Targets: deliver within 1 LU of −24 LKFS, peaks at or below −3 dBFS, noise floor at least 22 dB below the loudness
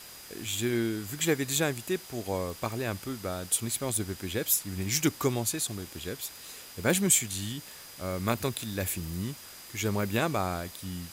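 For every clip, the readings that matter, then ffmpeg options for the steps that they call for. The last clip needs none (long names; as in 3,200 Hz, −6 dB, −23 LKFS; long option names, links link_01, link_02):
interfering tone 4,900 Hz; level of the tone −53 dBFS; background noise floor −47 dBFS; target noise floor −52 dBFS; integrated loudness −30.0 LKFS; sample peak −10.5 dBFS; target loudness −24.0 LKFS
→ -af "bandreject=frequency=4900:width=30"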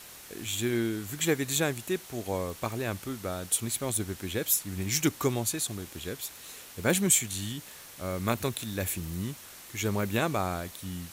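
interfering tone none found; background noise floor −48 dBFS; target noise floor −52 dBFS
→ -af "afftdn=noise_reduction=6:noise_floor=-48"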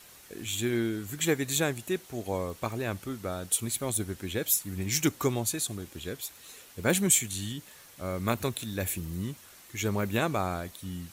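background noise floor −53 dBFS; integrated loudness −30.5 LKFS; sample peak −10.5 dBFS; target loudness −24.0 LKFS
→ -af "volume=6.5dB"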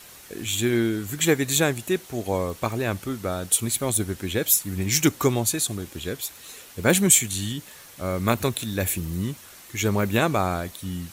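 integrated loudness −24.0 LKFS; sample peak −4.0 dBFS; background noise floor −46 dBFS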